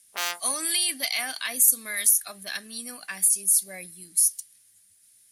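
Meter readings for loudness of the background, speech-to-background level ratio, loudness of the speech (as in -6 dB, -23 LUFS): -31.0 LUFS, 9.0 dB, -22.0 LUFS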